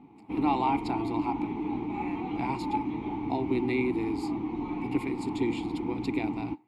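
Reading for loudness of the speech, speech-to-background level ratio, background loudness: −32.5 LKFS, 1.0 dB, −33.5 LKFS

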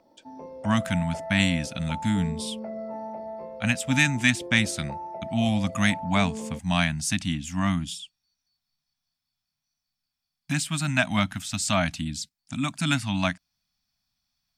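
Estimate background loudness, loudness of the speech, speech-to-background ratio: −37.5 LKFS, −26.0 LKFS, 11.5 dB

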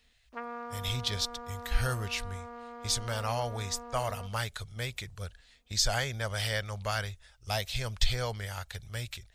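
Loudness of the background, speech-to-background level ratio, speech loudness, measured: −44.5 LKFS, 11.0 dB, −33.5 LKFS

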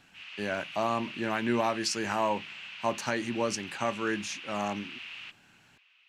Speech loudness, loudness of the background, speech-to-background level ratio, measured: −32.0 LKFS, −41.5 LKFS, 9.5 dB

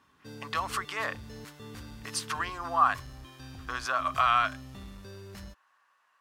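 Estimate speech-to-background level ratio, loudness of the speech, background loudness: 16.5 dB, −29.5 LKFS, −46.0 LKFS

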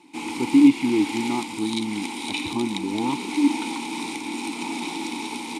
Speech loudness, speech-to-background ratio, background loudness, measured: −22.5 LKFS, 6.0 dB, −28.5 LKFS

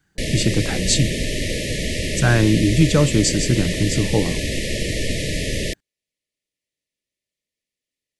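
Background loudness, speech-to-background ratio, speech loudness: −24.0 LKFS, 4.5 dB, −19.5 LKFS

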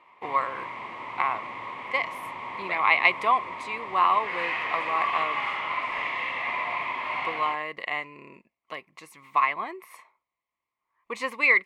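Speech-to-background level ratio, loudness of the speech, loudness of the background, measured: 5.0 dB, −26.5 LKFS, −31.5 LKFS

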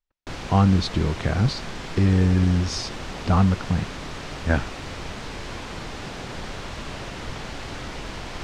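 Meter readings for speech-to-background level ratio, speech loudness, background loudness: 12.0 dB, −22.5 LKFS, −34.5 LKFS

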